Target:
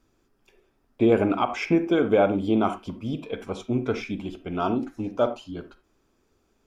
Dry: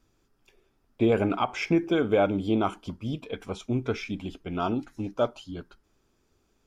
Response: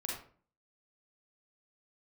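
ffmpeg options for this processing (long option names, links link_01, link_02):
-filter_complex "[0:a]asplit=2[link_01][link_02];[link_02]highpass=240,lowpass=2800[link_03];[1:a]atrim=start_sample=2205,afade=type=out:start_time=0.15:duration=0.01,atrim=end_sample=7056,lowshelf=frequency=290:gain=9.5[link_04];[link_03][link_04]afir=irnorm=-1:irlink=0,volume=-7dB[link_05];[link_01][link_05]amix=inputs=2:normalize=0"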